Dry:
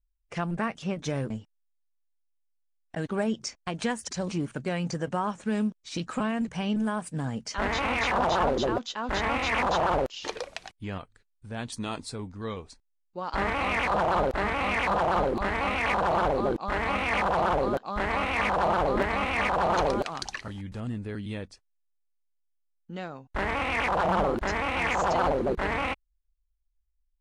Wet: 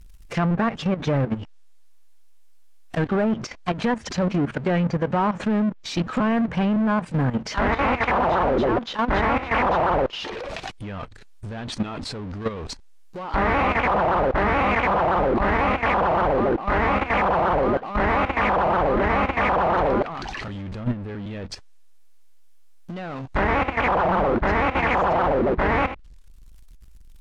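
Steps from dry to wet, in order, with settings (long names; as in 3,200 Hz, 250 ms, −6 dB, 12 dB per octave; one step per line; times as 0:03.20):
power curve on the samples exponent 0.5
treble cut that deepens with the level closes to 1,900 Hz, closed at −21 dBFS
output level in coarse steps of 12 dB
level +4 dB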